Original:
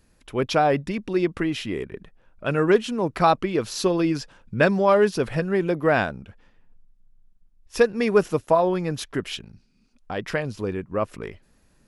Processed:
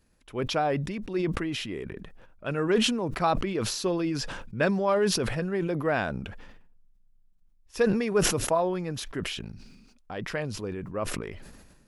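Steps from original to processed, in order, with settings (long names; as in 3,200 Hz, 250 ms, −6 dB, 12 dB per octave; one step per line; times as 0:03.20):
level that may fall only so fast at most 39 dB per second
level −7 dB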